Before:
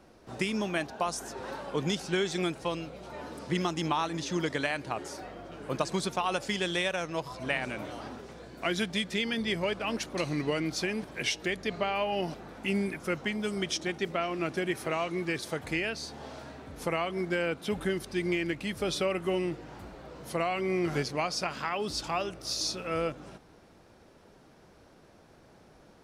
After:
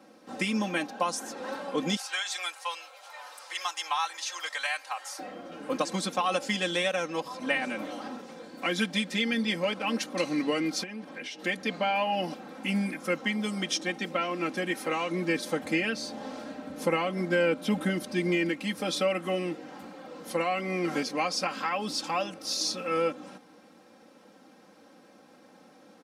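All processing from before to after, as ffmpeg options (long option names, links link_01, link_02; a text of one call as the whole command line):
ffmpeg -i in.wav -filter_complex "[0:a]asettb=1/sr,asplit=3[link_01][link_02][link_03];[link_01]atrim=end=1.964[link_04];[link_02]atrim=start=1.96:end=5.19,asetpts=PTS-STARTPTS,afade=type=in:duration=0.004:curve=qsin,afade=type=out:start_time=3.226:duration=0.004:curve=qsin,highpass=frequency=800:width=0.5412,highpass=frequency=800:width=1.3066,highshelf=frequency=8400:gain=7[link_05];[link_03]atrim=start=5.186[link_06];[link_04][link_05]acrossfade=duration=0.004:curve1=hsin:curve2=qsin[link_07];[link_07][link_06]acrossfade=duration=0.004:curve1=qsin:curve2=hsin,asettb=1/sr,asplit=3[link_08][link_09][link_10];[link_08]atrim=end=10.834[link_11];[link_09]atrim=start=10.83:end=11.39,asetpts=PTS-STARTPTS,afade=type=in:duration=0.004:curve=qsin,afade=type=out:start_time=0.556:duration=0.004:curve=qsin,highshelf=frequency=6600:gain=-11,acompressor=threshold=-40dB:ratio=3:attack=3.2:release=140:knee=1:detection=peak[link_12];[link_10]atrim=start=11.386[link_13];[link_11][link_12]acrossfade=duration=0.004:curve1=hsin:curve2=qsin[link_14];[link_14][link_13]acrossfade=duration=0.004:curve1=qsin:curve2=hsin,asettb=1/sr,asplit=3[link_15][link_16][link_17];[link_15]atrim=end=15.104[link_18];[link_16]atrim=start=15.1:end=18.49,asetpts=PTS-STARTPTS,afade=type=in:duration=0.004:curve=qsin,afade=type=out:start_time=3.386:duration=0.004:curve=qsin,lowshelf=frequency=330:gain=6.5,aeval=exprs='val(0)+0.00398*sin(2*PI*600*n/s)':channel_layout=same[link_19];[link_17]atrim=start=18.486[link_20];[link_18][link_19]acrossfade=duration=0.004:curve1=hsin:curve2=qsin[link_21];[link_21][link_20]acrossfade=duration=0.004:curve1=qsin:curve2=hsin,highpass=frequency=140:width=0.5412,highpass=frequency=140:width=1.3066,aecho=1:1:3.8:0.85" out.wav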